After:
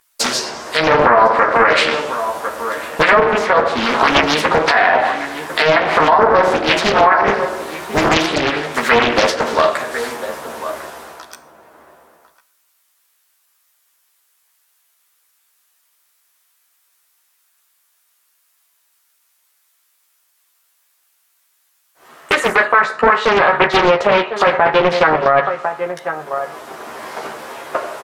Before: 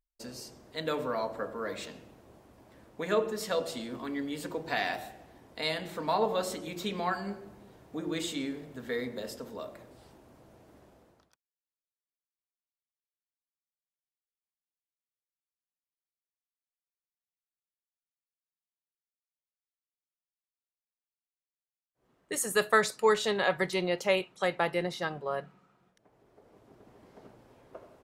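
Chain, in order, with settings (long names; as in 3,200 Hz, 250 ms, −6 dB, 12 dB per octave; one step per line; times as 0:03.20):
RIAA equalisation recording
treble cut that deepens with the level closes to 1,300 Hz, closed at −29.5 dBFS
parametric band 1,300 Hz +12 dB 2.3 octaves
downward compressor 6 to 1, threshold −25 dBFS, peak gain reduction 13.5 dB
double-tracking delay 13 ms −3 dB
slap from a distant wall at 180 metres, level −12 dB
convolution reverb, pre-delay 3 ms, DRR 11.5 dB
boost into a limiter +21 dB
highs frequency-modulated by the lows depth 0.91 ms
level −1 dB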